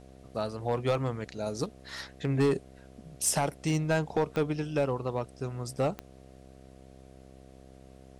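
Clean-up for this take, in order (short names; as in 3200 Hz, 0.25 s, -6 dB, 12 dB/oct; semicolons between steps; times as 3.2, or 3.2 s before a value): clip repair -19.5 dBFS; de-click; de-hum 65.8 Hz, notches 11; expander -45 dBFS, range -21 dB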